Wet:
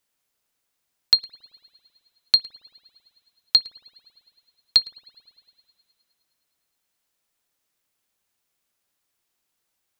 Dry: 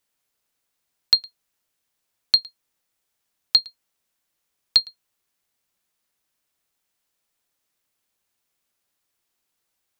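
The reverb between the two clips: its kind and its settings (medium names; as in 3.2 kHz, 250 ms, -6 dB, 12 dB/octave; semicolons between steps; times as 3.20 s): spring tank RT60 2.6 s, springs 55 ms, chirp 50 ms, DRR 18.5 dB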